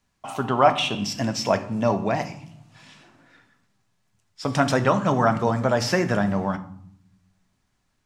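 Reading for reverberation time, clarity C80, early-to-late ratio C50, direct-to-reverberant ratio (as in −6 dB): 0.65 s, 18.0 dB, 15.0 dB, 8.0 dB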